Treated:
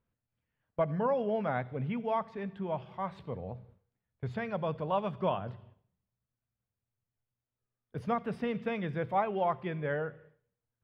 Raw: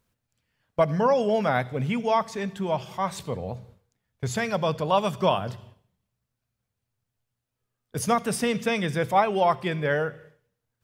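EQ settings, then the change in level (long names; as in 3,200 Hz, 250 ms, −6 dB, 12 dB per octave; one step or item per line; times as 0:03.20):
high-frequency loss of the air 420 metres
−7.0 dB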